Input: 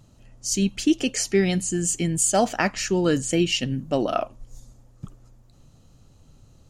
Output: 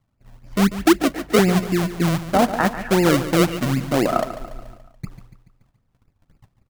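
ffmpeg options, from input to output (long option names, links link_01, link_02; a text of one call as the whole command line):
ffmpeg -i in.wav -filter_complex "[0:a]agate=range=-21dB:threshold=-48dB:ratio=16:detection=peak,lowpass=frequency=1600:width=0.5412,lowpass=frequency=1600:width=1.3066,acrossover=split=510[link_01][link_02];[link_01]acrusher=samples=36:mix=1:aa=0.000001:lfo=1:lforange=36:lforate=3.9[link_03];[link_03][link_02]amix=inputs=2:normalize=0,asettb=1/sr,asplit=3[link_04][link_05][link_06];[link_04]atrim=end=0.764[link_07];[link_05]atrim=start=0.76:end=1.39,asetpts=PTS-STARTPTS,afade=type=in:duration=0.004:curve=qsin,afade=type=out:start_time=0.626:duration=0.004:curve=qsin,afreqshift=22[link_08];[link_06]atrim=start=1.386[link_09];[link_07][link_08]acrossfade=duration=0.004:curve1=hsin:curve2=qsin[link_10];[link_10][link_09]acrossfade=duration=0.004:curve1=qsin:curve2=hsin,aecho=1:1:143|286|429|572|715:0.224|0.119|0.0629|0.0333|0.0177,volume=5.5dB" out.wav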